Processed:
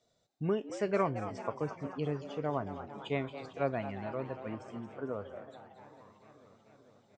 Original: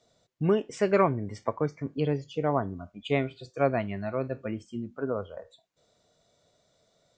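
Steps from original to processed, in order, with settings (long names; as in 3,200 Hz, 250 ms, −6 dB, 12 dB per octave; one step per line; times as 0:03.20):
echo with shifted repeats 226 ms, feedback 59%, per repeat +130 Hz, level −12 dB
feedback echo with a swinging delay time 442 ms, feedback 78%, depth 122 cents, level −21 dB
level −7.5 dB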